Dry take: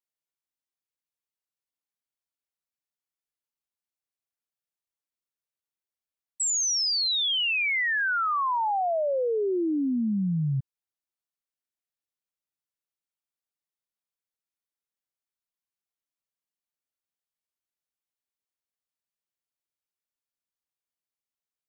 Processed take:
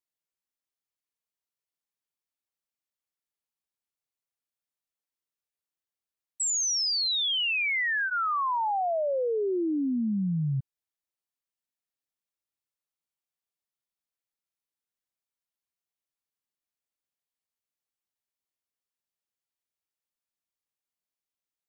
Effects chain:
notch filter 1,500 Hz, Q 29
level −1.5 dB

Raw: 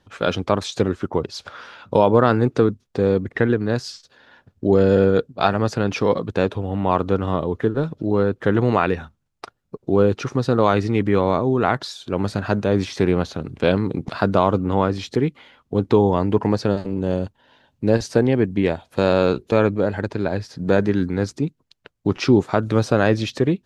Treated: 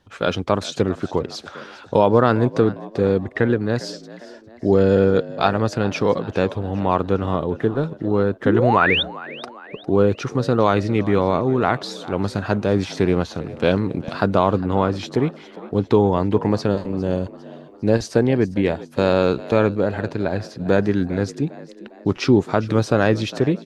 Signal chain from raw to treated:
sound drawn into the spectrogram rise, 0:08.45–0:09.03, 230–3,800 Hz −19 dBFS
echo with shifted repeats 404 ms, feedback 48%, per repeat +59 Hz, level −18 dB

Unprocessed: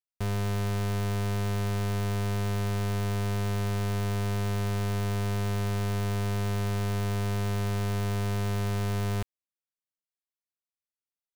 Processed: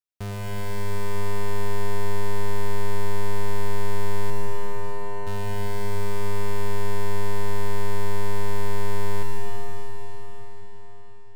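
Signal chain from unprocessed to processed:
0:04.30–0:05.27: resonant band-pass 570 Hz, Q 0.85
convolution reverb RT60 5.4 s, pre-delay 60 ms, DRR −2 dB
level −2 dB

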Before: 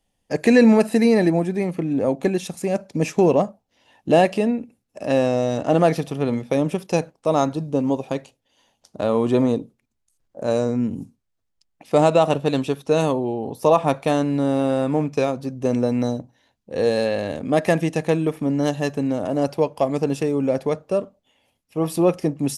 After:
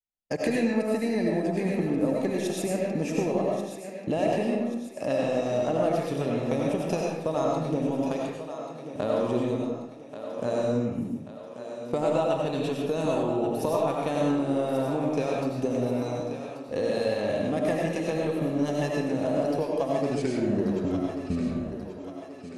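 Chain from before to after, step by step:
turntable brake at the end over 2.73 s
downward compressor 6 to 1, threshold −27 dBFS, peak gain reduction 16.5 dB
downward expander −39 dBFS
feedback echo with a high-pass in the loop 1,135 ms, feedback 53%, high-pass 230 Hz, level −10 dB
convolution reverb RT60 0.80 s, pre-delay 55 ms, DRR −2 dB

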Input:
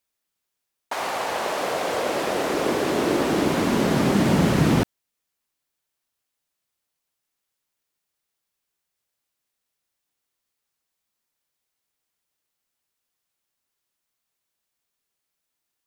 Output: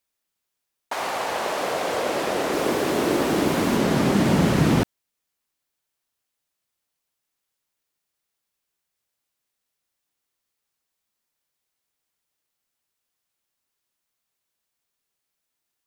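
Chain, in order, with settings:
0:02.53–0:03.77: high-shelf EQ 12,000 Hz +7 dB

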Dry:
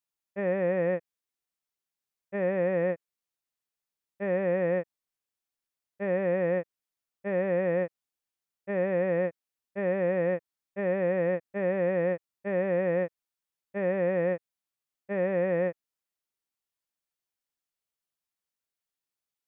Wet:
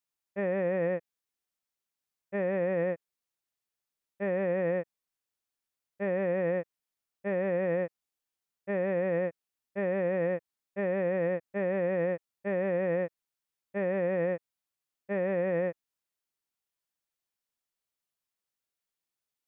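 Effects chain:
brickwall limiter −21 dBFS, peak gain reduction 3.5 dB

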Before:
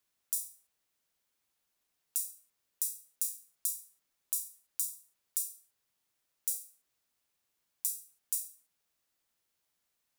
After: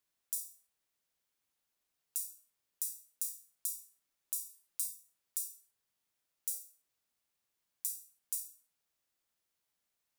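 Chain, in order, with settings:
0:04.49–0:04.93: comb filter 5.8 ms, depth 66%
convolution reverb RT60 0.35 s, pre-delay 37 ms, DRR 12 dB
level −4 dB

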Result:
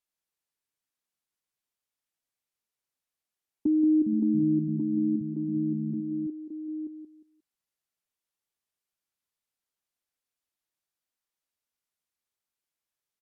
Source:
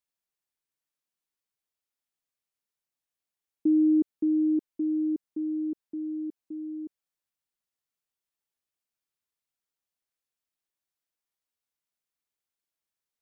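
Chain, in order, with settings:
treble cut that deepens with the level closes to 350 Hz, closed at −27 dBFS
repeating echo 178 ms, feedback 26%, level −8 dB
0:03.79–0:06.27: delay with pitch and tempo change per echo 274 ms, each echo −6 semitones, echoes 2, each echo −6 dB

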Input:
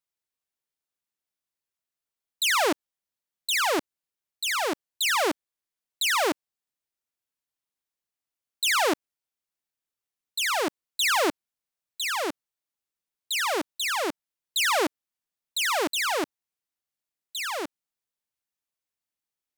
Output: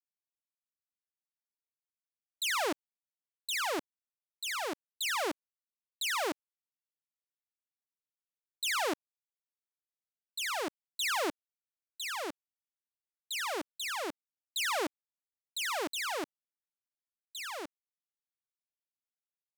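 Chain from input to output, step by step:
mu-law and A-law mismatch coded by A
level −8 dB

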